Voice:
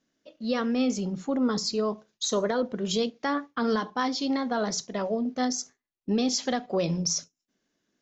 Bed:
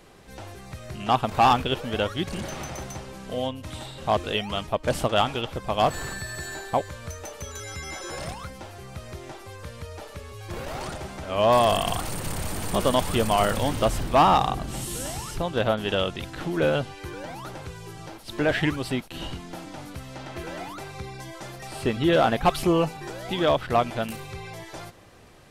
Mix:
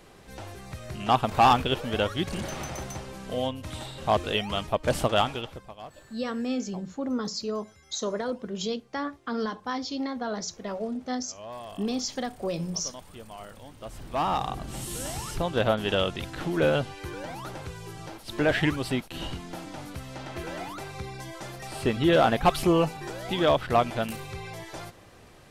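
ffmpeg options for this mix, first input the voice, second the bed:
-filter_complex "[0:a]adelay=5700,volume=-4dB[a];[1:a]volume=20.5dB,afade=t=out:st=5.11:d=0.64:silence=0.0891251,afade=t=in:st=13.79:d=1.5:silence=0.0891251[b];[a][b]amix=inputs=2:normalize=0"

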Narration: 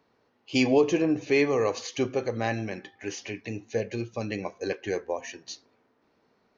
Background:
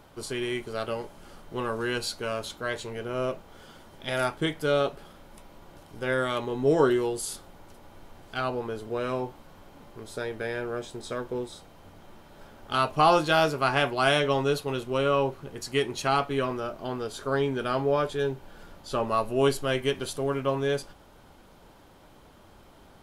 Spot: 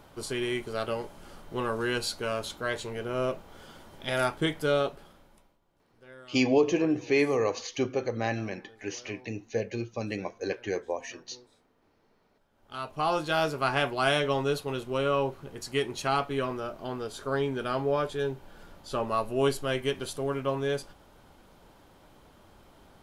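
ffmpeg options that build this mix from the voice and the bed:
-filter_complex "[0:a]adelay=5800,volume=-1.5dB[a];[1:a]volume=20.5dB,afade=t=out:st=4.59:d=0.99:silence=0.0707946,afade=t=in:st=12.49:d=1.15:silence=0.0944061[b];[a][b]amix=inputs=2:normalize=0"

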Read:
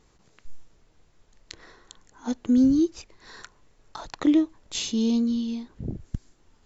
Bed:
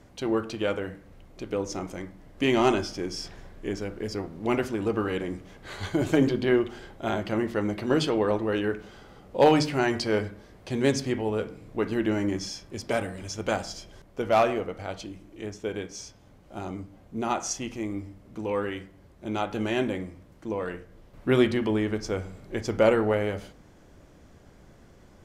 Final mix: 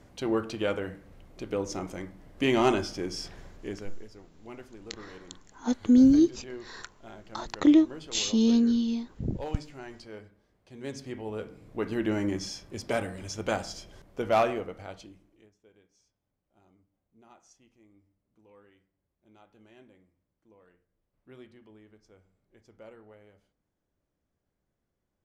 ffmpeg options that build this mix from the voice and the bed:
-filter_complex "[0:a]adelay=3400,volume=1dB[a];[1:a]volume=15.5dB,afade=t=out:st=3.41:d=0.67:silence=0.133352,afade=t=in:st=10.73:d=1.44:silence=0.141254,afade=t=out:st=14.33:d=1.17:silence=0.0446684[b];[a][b]amix=inputs=2:normalize=0"

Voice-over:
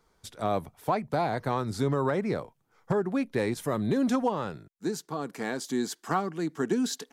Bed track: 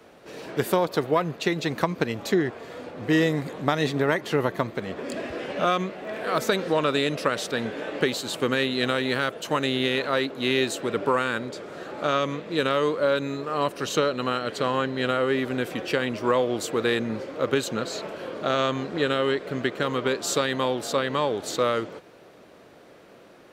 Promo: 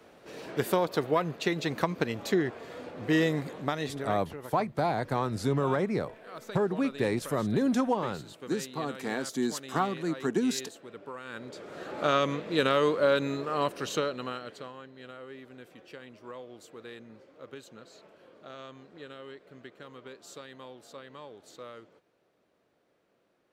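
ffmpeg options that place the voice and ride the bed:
-filter_complex "[0:a]adelay=3650,volume=-0.5dB[a];[1:a]volume=13.5dB,afade=t=out:st=3.37:d=0.85:silence=0.177828,afade=t=in:st=11.22:d=0.8:silence=0.133352,afade=t=out:st=13.28:d=1.46:silence=0.1[b];[a][b]amix=inputs=2:normalize=0"

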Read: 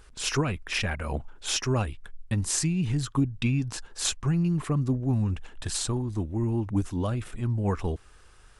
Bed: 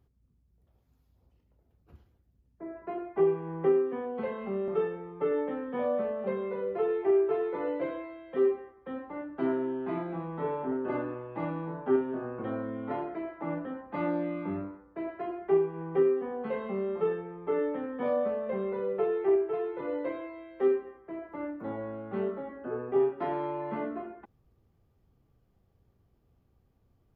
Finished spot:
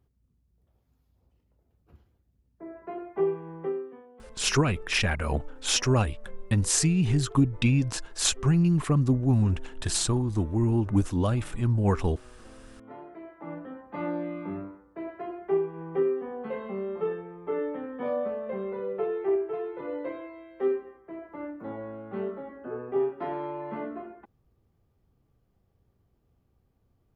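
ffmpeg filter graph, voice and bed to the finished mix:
-filter_complex "[0:a]adelay=4200,volume=3dB[a];[1:a]volume=15.5dB,afade=t=out:st=3.23:d=0.84:silence=0.149624,afade=t=in:st=12.66:d=1.45:silence=0.149624[b];[a][b]amix=inputs=2:normalize=0"

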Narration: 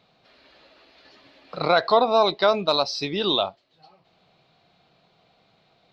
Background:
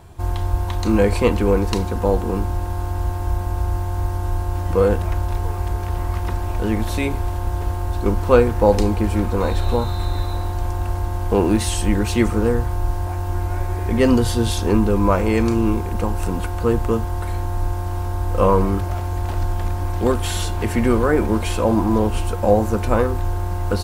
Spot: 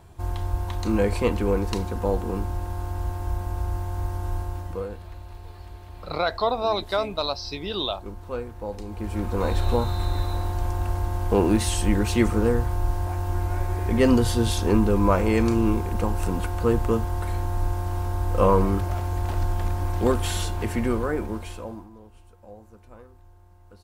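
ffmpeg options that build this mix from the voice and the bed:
-filter_complex "[0:a]adelay=4500,volume=-5.5dB[a];[1:a]volume=9.5dB,afade=t=out:st=4.38:d=0.5:silence=0.237137,afade=t=in:st=8.86:d=0.71:silence=0.16788,afade=t=out:st=20.2:d=1.7:silence=0.0446684[b];[a][b]amix=inputs=2:normalize=0"

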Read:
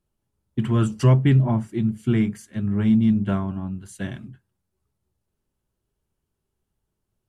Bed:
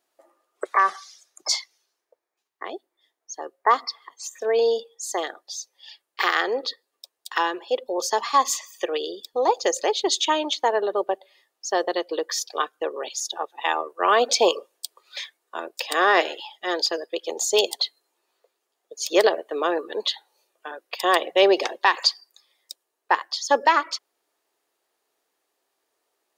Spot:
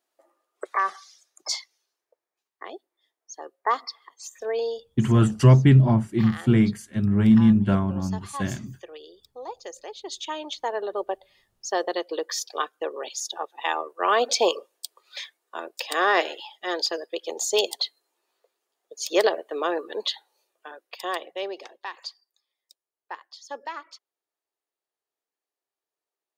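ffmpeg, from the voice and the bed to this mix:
-filter_complex "[0:a]adelay=4400,volume=2dB[a];[1:a]volume=9dB,afade=t=out:st=4.47:d=0.52:silence=0.266073,afade=t=in:st=9.95:d=1.49:silence=0.199526,afade=t=out:st=20.16:d=1.36:silence=0.188365[b];[a][b]amix=inputs=2:normalize=0"

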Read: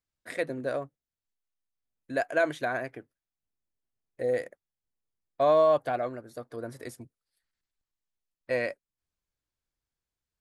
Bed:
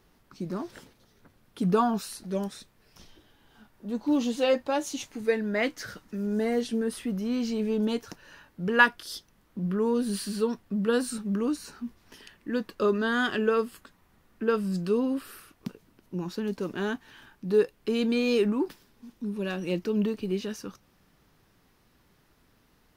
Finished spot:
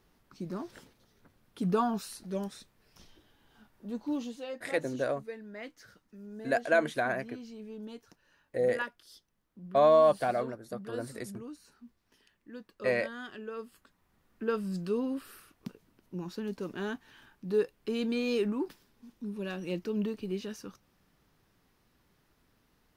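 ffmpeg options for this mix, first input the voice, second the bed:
-filter_complex "[0:a]adelay=4350,volume=0dB[a];[1:a]volume=6.5dB,afade=t=out:st=3.84:d=0.61:silence=0.251189,afade=t=in:st=13.5:d=0.97:silence=0.281838[b];[a][b]amix=inputs=2:normalize=0"

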